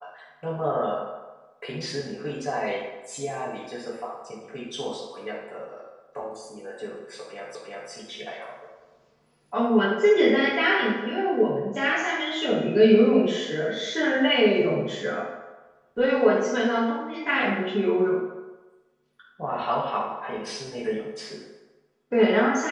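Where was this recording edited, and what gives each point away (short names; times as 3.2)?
7.55 repeat of the last 0.35 s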